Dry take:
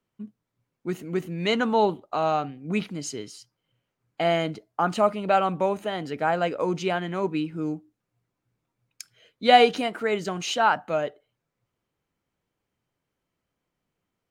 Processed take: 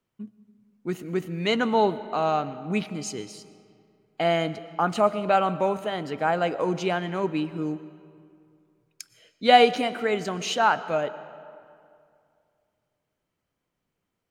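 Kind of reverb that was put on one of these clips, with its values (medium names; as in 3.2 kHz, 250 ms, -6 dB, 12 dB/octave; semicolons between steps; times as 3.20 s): algorithmic reverb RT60 2.4 s, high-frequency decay 0.65×, pre-delay 75 ms, DRR 15 dB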